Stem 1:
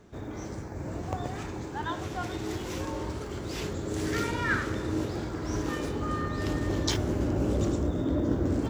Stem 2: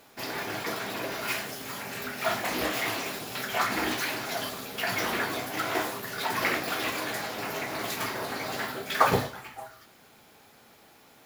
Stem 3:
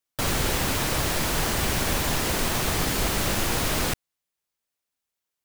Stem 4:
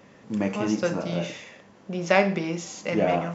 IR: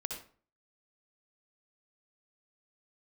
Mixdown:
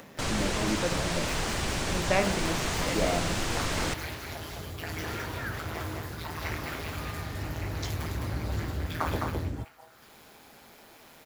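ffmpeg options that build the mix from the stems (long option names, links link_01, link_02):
-filter_complex "[0:a]highpass=65,asubboost=boost=4:cutoff=140,adelay=950,volume=-10dB[link_01];[1:a]tremolo=f=160:d=0.947,volume=-6dB,asplit=2[link_02][link_03];[link_03]volume=-3.5dB[link_04];[2:a]lowpass=frequency=8700:width=0.5412,lowpass=frequency=8700:width=1.3066,volume=-5dB[link_05];[3:a]volume=-6.5dB[link_06];[link_04]aecho=0:1:210:1[link_07];[link_01][link_02][link_05][link_06][link_07]amix=inputs=5:normalize=0,acompressor=mode=upward:threshold=-41dB:ratio=2.5"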